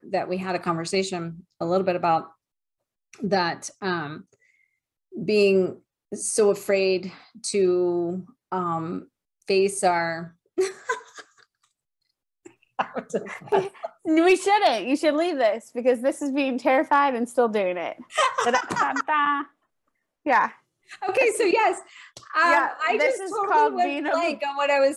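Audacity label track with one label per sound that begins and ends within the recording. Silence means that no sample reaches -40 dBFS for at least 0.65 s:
3.140000	4.210000	sound
5.130000	11.430000	sound
12.460000	19.460000	sound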